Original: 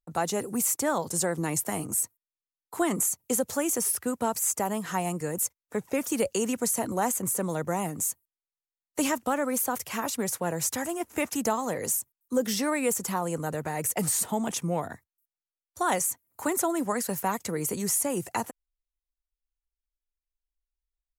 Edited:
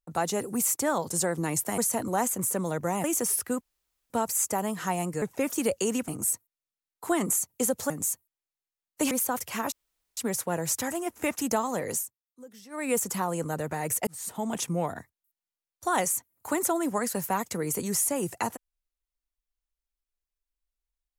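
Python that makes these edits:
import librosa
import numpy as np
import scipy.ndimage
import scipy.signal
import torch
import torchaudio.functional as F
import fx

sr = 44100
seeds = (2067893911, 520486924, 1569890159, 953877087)

y = fx.edit(x, sr, fx.swap(start_s=1.78, length_s=1.82, other_s=6.62, other_length_s=1.26),
    fx.insert_room_tone(at_s=4.17, length_s=0.49),
    fx.cut(start_s=5.29, length_s=0.47),
    fx.cut(start_s=9.09, length_s=0.41),
    fx.insert_room_tone(at_s=10.11, length_s=0.45),
    fx.fade_down_up(start_s=11.86, length_s=0.99, db=-21.5, fade_s=0.21),
    fx.fade_in_span(start_s=14.01, length_s=0.51), tone=tone)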